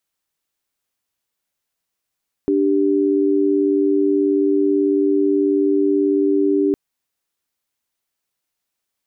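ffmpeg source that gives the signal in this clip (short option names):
-f lavfi -i "aevalsrc='0.15*(sin(2*PI*293.66*t)+sin(2*PI*392*t))':d=4.26:s=44100"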